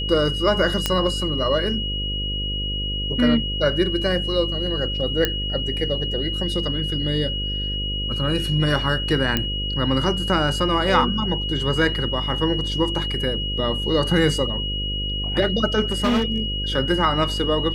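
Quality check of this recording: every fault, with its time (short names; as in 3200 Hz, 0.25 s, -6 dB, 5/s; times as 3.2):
buzz 50 Hz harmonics 11 -28 dBFS
tone 2900 Hz -26 dBFS
0.86 pop -4 dBFS
5.25 pop -5 dBFS
9.37 pop -6 dBFS
15.84–16.4 clipped -15.5 dBFS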